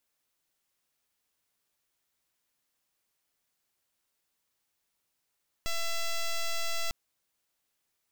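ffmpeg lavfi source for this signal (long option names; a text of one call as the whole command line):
ffmpeg -f lavfi -i "aevalsrc='0.0335*(2*lt(mod(670*t,1),0.06)-1)':duration=1.25:sample_rate=44100" out.wav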